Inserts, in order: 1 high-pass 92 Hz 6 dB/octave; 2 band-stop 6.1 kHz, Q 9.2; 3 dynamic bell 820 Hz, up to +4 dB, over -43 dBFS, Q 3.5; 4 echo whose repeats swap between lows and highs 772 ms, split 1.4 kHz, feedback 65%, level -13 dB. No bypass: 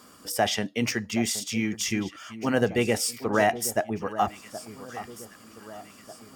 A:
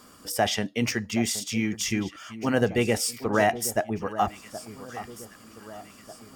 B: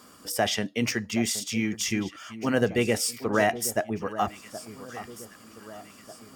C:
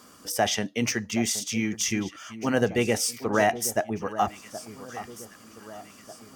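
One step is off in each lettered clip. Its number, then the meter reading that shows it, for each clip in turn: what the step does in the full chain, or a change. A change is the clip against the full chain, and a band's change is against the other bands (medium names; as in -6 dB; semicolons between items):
1, 125 Hz band +2.0 dB; 3, 1 kHz band -2.0 dB; 2, 8 kHz band +2.5 dB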